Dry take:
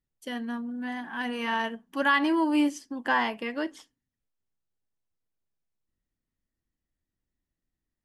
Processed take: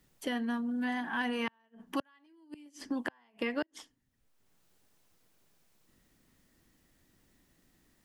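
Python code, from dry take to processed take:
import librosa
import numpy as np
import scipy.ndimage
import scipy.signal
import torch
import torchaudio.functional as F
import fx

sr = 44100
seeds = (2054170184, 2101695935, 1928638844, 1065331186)

y = fx.band_shelf(x, sr, hz=850.0, db=-9.5, octaves=1.7, at=(2.26, 2.66))
y = fx.gate_flip(y, sr, shuts_db=-20.0, range_db=-42)
y = fx.band_squash(y, sr, depth_pct=70)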